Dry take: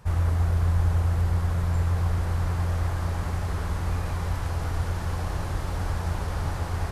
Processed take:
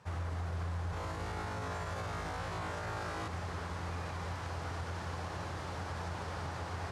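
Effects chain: HPF 77 Hz 24 dB/oct; low shelf 260 Hz -7 dB; 0.91–3.28 flutter echo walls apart 3.2 m, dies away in 0.9 s; limiter -25.5 dBFS, peak gain reduction 6.5 dB; LPF 6800 Hz 12 dB/oct; gain -4.5 dB

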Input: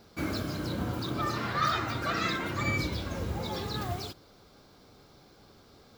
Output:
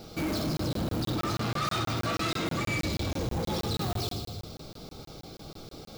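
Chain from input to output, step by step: in parallel at +2.5 dB: compressor, threshold -40 dBFS, peak gain reduction 15.5 dB; on the sum: bell 1700 Hz -11 dB 0.5 oct; notch 1000 Hz, Q 6.5; thin delay 81 ms, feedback 68%, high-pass 3900 Hz, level -7 dB; on a send at -4.5 dB: reverb RT60 1.1 s, pre-delay 6 ms; on the sum: soft clip -30 dBFS, distortion -10 dB; crackling interface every 0.16 s, samples 1024, zero, from 0.57; gain +3.5 dB

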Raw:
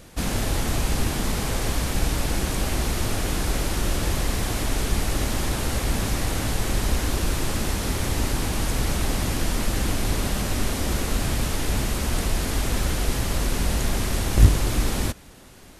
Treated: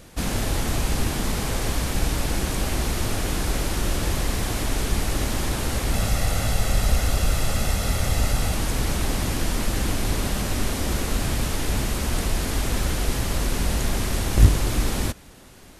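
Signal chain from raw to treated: 5.93–8.55 comb 1.5 ms, depth 53%

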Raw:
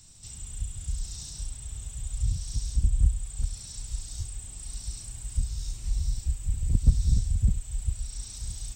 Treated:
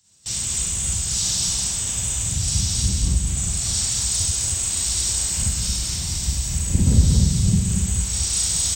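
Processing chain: in parallel at 0 dB: compressor 12:1, threshold -32 dBFS, peak gain reduction 20.5 dB; on the sum: harmonic-percussive split percussive +9 dB; HPF 76 Hz 12 dB/oct; low shelf 460 Hz -5.5 dB; Schroeder reverb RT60 0.95 s, combs from 33 ms, DRR -7 dB; gate with hold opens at -21 dBFS; on a send: feedback echo 0.229 s, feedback 19%, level -4 dB; on the sum: harmoniser -3 st -7 dB

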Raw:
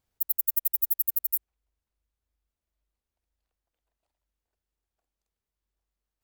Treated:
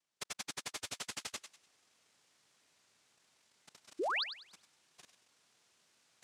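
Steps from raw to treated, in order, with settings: reverse; upward compressor, threshold -44 dBFS; reverse; noise vocoder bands 1; level quantiser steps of 16 dB; painted sound rise, 3.99–4.24, 300–5200 Hz -41 dBFS; thinning echo 98 ms, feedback 31%, high-pass 1000 Hz, level -9 dB; gain +7 dB

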